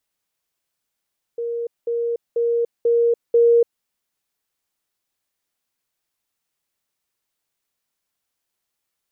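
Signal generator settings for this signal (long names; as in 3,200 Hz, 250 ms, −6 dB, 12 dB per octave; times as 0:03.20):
level staircase 469 Hz −22.5 dBFS, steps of 3 dB, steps 5, 0.29 s 0.20 s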